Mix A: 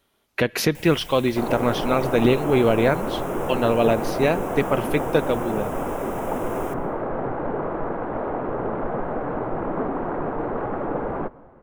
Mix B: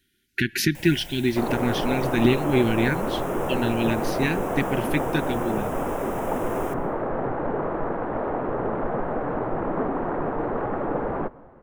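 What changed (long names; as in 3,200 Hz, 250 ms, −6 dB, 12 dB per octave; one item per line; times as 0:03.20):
speech: add linear-phase brick-wall band-stop 400–1,400 Hz
master: remove notch filter 1,800 Hz, Q 24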